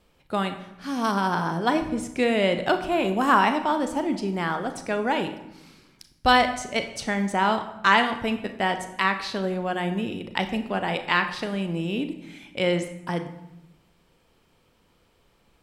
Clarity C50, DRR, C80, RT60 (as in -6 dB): 10.0 dB, 7.5 dB, 12.5 dB, 0.95 s